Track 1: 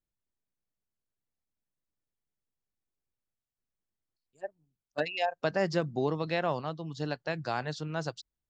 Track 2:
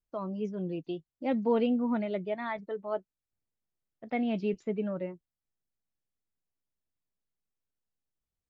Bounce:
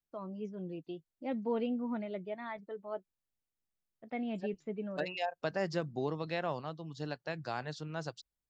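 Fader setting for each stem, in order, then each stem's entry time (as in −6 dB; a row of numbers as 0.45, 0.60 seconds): −5.5, −7.0 decibels; 0.00, 0.00 seconds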